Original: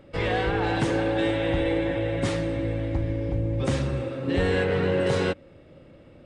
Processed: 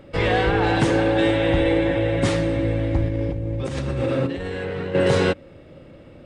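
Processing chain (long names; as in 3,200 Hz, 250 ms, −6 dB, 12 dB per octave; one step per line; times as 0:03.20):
0:03.06–0:04.95: compressor whose output falls as the input rises −31 dBFS, ratio −1
level +5.5 dB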